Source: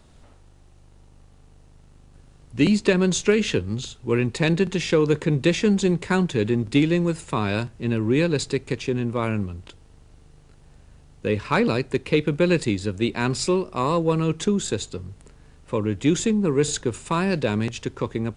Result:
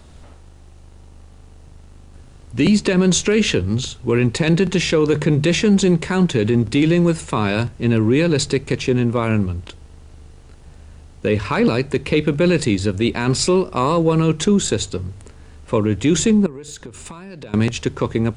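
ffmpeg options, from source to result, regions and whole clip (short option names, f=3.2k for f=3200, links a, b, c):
-filter_complex "[0:a]asettb=1/sr,asplit=3[a][b][c];[a]atrim=end=16.464[d];[b]atrim=start=16.46:end=17.54,asetpts=PTS-STARTPTS,afade=t=in:d=0.004:c=qsin,afade=t=out:st=1.076:d=0.004:c=qsin,acompressor=threshold=-35dB:ratio=16:attack=3.2:release=140:knee=1:detection=peak,aeval=exprs='(tanh(10*val(0)+0.55)-tanh(0.55))/10':c=same[e];[c]atrim=start=17.536[f];[d][e]acrossfade=d=0.004:c1=hsin:c2=qsin[g];[g][f]acrossfade=d=0.004:c1=qsin:c2=hsin,equalizer=f=67:t=o:w=0.44:g=7.5,bandreject=f=49.81:t=h:w=4,bandreject=f=99.62:t=h:w=4,bandreject=f=149.43:t=h:w=4,alimiter=limit=-14.5dB:level=0:latency=1:release=21,volume=7.5dB"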